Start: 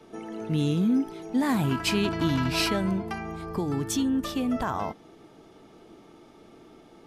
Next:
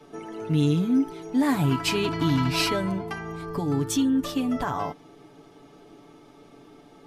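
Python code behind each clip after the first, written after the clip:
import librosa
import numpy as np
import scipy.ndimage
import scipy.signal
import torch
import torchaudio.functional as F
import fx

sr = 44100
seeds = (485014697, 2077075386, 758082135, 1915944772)

y = x + 0.6 * np.pad(x, (int(7.0 * sr / 1000.0), 0))[:len(x)]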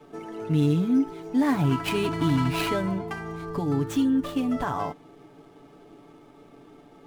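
y = scipy.ndimage.median_filter(x, 9, mode='constant')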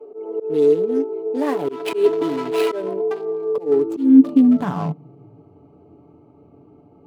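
y = fx.wiener(x, sr, points=25)
y = fx.filter_sweep_highpass(y, sr, from_hz=430.0, to_hz=83.0, start_s=3.67, end_s=5.65, q=7.3)
y = fx.auto_swell(y, sr, attack_ms=134.0)
y = y * librosa.db_to_amplitude(1.5)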